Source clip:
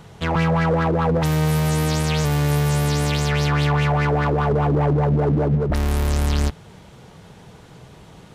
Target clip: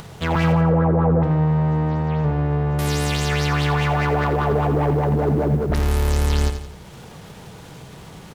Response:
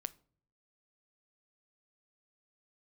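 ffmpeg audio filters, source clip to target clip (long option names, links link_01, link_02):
-filter_complex "[0:a]acrusher=bits=7:mix=0:aa=0.5,asettb=1/sr,asplit=3[link_01][link_02][link_03];[link_01]atrim=end=0.524[link_04];[link_02]atrim=start=0.52:end=2.79,asetpts=PTS-STARTPTS,afade=type=in:duration=0.004:curve=qsin,afade=type=out:start_time=2.266:duration=0.004:curve=qsin,lowpass=1100[link_05];[link_03]atrim=start=2.786[link_06];[link_04][link_05]acrossfade=duration=0.004:curve1=hsin:curve2=qsin[link_07];[link_07][link_06]acrossfade=duration=0.004:curve1=qsin:curve2=hsin,aecho=1:1:85|170|255|340|425:0.355|0.16|0.0718|0.0323|0.0145,acompressor=mode=upward:threshold=-33dB:ratio=2.5"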